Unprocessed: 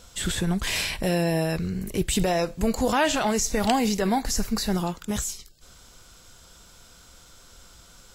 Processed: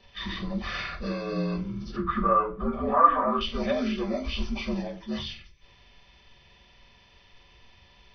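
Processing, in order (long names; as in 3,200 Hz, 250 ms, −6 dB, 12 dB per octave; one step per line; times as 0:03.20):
partials spread apart or drawn together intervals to 77%
0:01.96–0:03.41: low-pass with resonance 1,200 Hz, resonance Q 14
convolution reverb RT60 0.30 s, pre-delay 4 ms, DRR 1.5 dB
level −8.5 dB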